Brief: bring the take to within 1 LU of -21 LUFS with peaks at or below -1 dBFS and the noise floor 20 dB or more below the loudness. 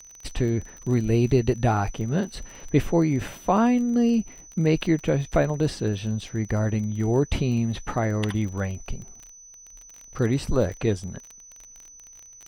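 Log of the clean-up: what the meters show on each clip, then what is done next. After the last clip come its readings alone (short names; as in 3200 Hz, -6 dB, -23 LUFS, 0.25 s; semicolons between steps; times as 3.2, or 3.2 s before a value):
ticks 29/s; steady tone 6000 Hz; tone level -45 dBFS; loudness -24.5 LUFS; peak -8.0 dBFS; loudness target -21.0 LUFS
-> de-click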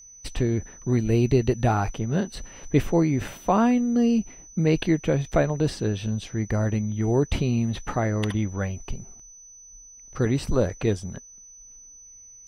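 ticks 0/s; steady tone 6000 Hz; tone level -45 dBFS
-> notch 6000 Hz, Q 30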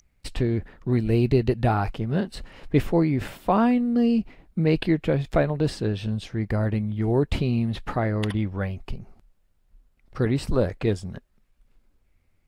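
steady tone none; loudness -24.5 LUFS; peak -8.0 dBFS; loudness target -21.0 LUFS
-> gain +3.5 dB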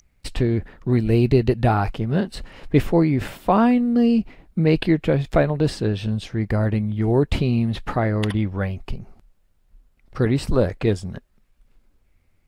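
loudness -21.0 LUFS; peak -4.5 dBFS; noise floor -63 dBFS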